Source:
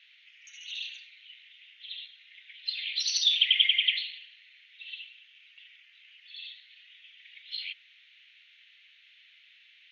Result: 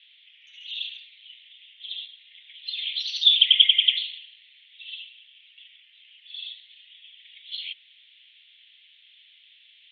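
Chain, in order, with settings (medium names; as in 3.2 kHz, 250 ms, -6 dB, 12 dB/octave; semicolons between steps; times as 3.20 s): resonant low-pass 3.4 kHz, resonance Q 6.5; band-stop 1.5 kHz, Q 26; trim -7.5 dB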